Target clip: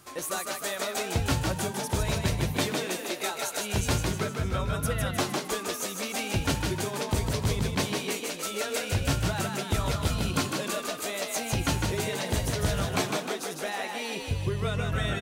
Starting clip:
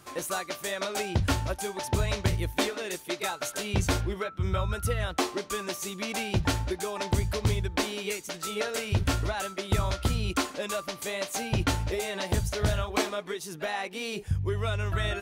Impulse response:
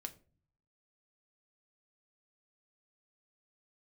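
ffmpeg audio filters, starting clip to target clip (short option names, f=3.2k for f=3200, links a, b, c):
-filter_complex "[0:a]highshelf=f=5k:g=4.5,asplit=2[a][b];[b]asplit=8[c][d][e][f][g][h][i][j];[c]adelay=154,afreqshift=42,volume=-4dB[k];[d]adelay=308,afreqshift=84,volume=-8.6dB[l];[e]adelay=462,afreqshift=126,volume=-13.2dB[m];[f]adelay=616,afreqshift=168,volume=-17.7dB[n];[g]adelay=770,afreqshift=210,volume=-22.3dB[o];[h]adelay=924,afreqshift=252,volume=-26.9dB[p];[i]adelay=1078,afreqshift=294,volume=-31.5dB[q];[j]adelay=1232,afreqshift=336,volume=-36.1dB[r];[k][l][m][n][o][p][q][r]amix=inputs=8:normalize=0[s];[a][s]amix=inputs=2:normalize=0,volume=-2dB"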